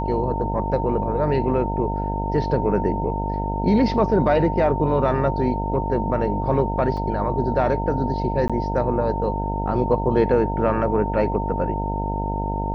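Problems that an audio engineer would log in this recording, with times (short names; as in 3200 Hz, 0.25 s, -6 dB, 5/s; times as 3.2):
buzz 50 Hz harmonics 19 -26 dBFS
tone 910 Hz -27 dBFS
6.97 gap 3.9 ms
8.48–8.5 gap 16 ms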